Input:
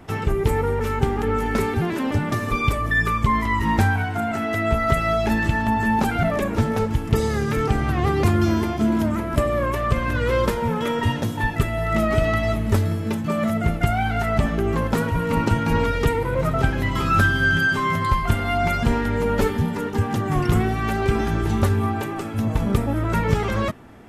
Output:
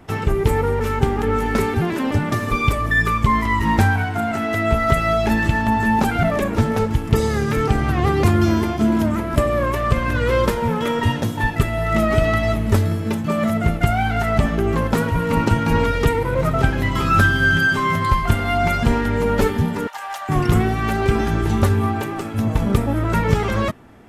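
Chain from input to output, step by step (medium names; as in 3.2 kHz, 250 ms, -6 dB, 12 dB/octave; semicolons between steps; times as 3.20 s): 19.87–20.29 s: steep high-pass 600 Hz 72 dB/octave; in parallel at -4.5 dB: crossover distortion -35.5 dBFS; on the sum: trim -1 dB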